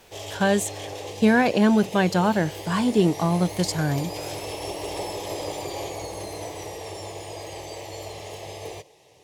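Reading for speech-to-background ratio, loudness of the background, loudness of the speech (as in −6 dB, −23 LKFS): 12.0 dB, −34.5 LKFS, −22.5 LKFS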